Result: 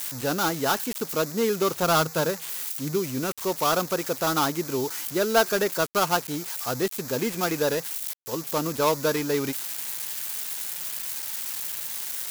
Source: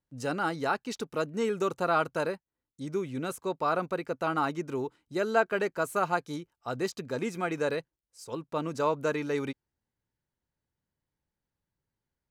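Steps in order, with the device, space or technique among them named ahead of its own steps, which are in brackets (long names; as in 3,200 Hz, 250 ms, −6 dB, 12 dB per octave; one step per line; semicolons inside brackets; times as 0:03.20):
0:01.82–0:02.98: dynamic equaliser 160 Hz, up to +7 dB, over −56 dBFS, Q 6.3
budget class-D amplifier (gap after every zero crossing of 0.17 ms; spike at every zero crossing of −22 dBFS)
level +5 dB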